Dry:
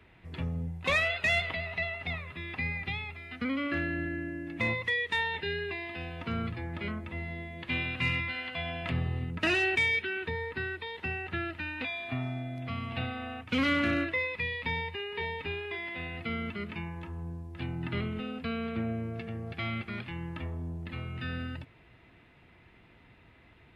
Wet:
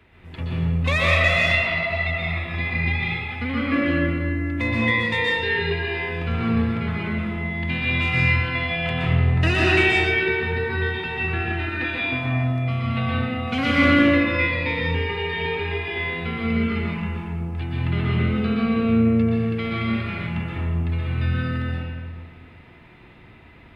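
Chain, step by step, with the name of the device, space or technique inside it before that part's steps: stairwell (reverberation RT60 1.9 s, pre-delay 116 ms, DRR -6 dB); trim +3 dB

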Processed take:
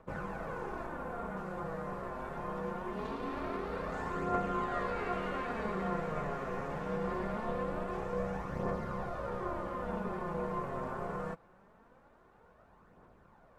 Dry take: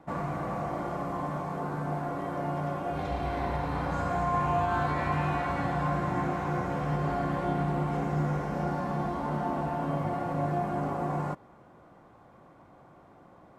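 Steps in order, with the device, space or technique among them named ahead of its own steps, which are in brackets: 0.86–1.37 s: peaking EQ 5.2 kHz -5.5 dB 1.2 oct; alien voice (ring modulator 340 Hz; flange 0.23 Hz, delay 0 ms, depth 7.8 ms, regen +43%)

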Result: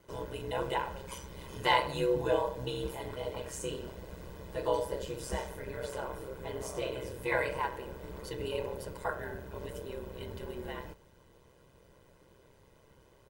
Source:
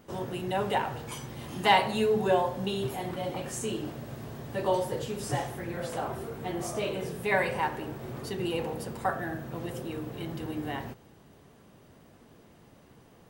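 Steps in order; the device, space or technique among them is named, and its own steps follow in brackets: ring-modulated robot voice (ring modulator 65 Hz; comb 2 ms, depth 60%); trim -3 dB

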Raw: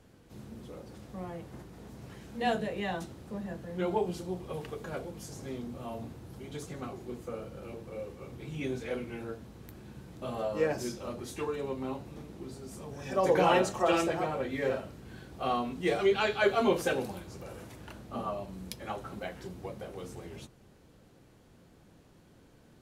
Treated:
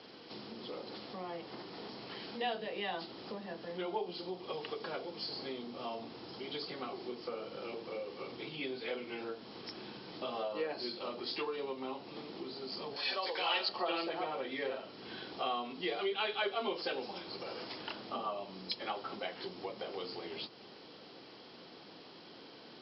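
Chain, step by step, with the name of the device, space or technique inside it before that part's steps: hearing aid with frequency lowering (knee-point frequency compression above 3.9 kHz 4:1; compression 3:1, threshold -48 dBFS, peak gain reduction 20 dB; cabinet simulation 370–5700 Hz, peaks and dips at 570 Hz -4 dB, 1.6 kHz -4 dB, 3.2 kHz +7 dB); 12.96–13.69 s: tilt EQ +4.5 dB/octave; trim +11 dB

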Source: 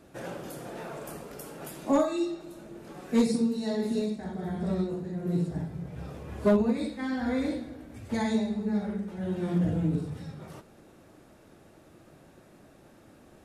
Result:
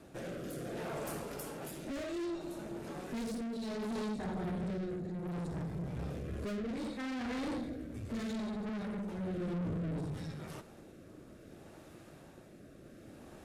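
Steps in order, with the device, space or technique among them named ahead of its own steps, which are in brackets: overdriven rotary cabinet (valve stage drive 39 dB, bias 0.5; rotary cabinet horn 0.65 Hz); trim +5 dB

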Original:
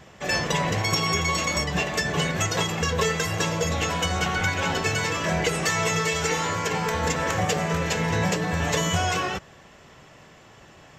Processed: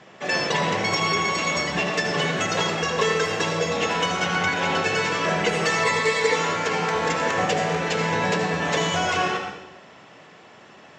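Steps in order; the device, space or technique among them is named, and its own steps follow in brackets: supermarket ceiling speaker (band-pass 200–5200 Hz; reverberation RT60 0.90 s, pre-delay 68 ms, DRR 3 dB); 5.83–6.36 s: rippled EQ curve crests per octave 0.98, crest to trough 9 dB; trim +1.5 dB

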